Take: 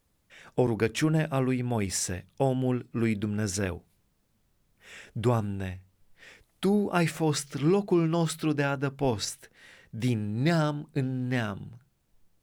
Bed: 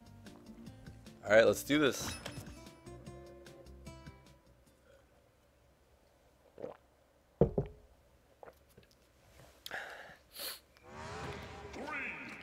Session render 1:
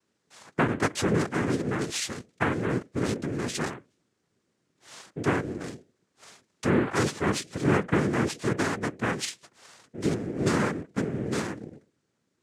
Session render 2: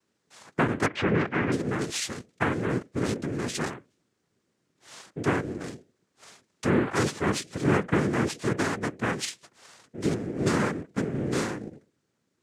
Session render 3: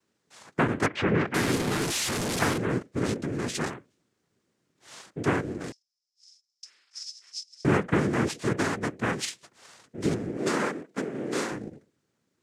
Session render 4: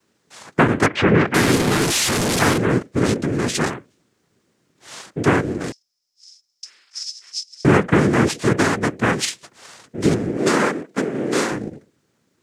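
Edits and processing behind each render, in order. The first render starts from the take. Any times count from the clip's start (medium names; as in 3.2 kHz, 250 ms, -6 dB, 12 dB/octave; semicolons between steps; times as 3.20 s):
noise-vocoded speech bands 3
0.86–1.52 s: resonant low-pass 2.5 kHz, resonance Q 1.8; 11.11–11.70 s: doubling 38 ms -2.5 dB
1.34–2.58 s: one-bit delta coder 64 kbps, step -23 dBFS; 5.72–7.65 s: ladder band-pass 5.4 kHz, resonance 85%; 10.37–11.52 s: high-pass 270 Hz
trim +9.5 dB; peak limiter -3 dBFS, peak gain reduction 2.5 dB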